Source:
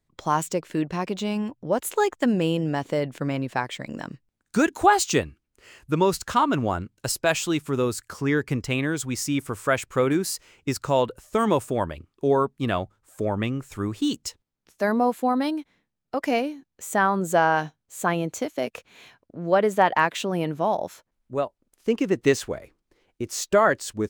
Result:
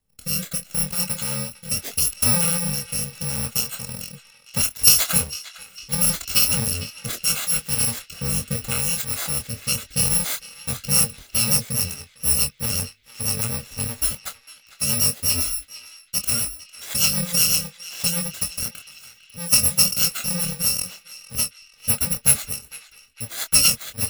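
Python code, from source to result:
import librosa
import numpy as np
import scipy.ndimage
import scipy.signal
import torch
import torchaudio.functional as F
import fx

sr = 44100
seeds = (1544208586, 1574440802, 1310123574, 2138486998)

y = fx.bit_reversed(x, sr, seeds[0], block=128)
y = fx.rotary_switch(y, sr, hz=0.75, then_hz=8.0, switch_at_s=10.62)
y = fx.echo_banded(y, sr, ms=453, feedback_pct=63, hz=2700.0, wet_db=-13.0)
y = fx.chorus_voices(y, sr, voices=4, hz=0.99, base_ms=24, depth_ms=3.4, mix_pct=30)
y = y * librosa.db_to_amplitude(7.0)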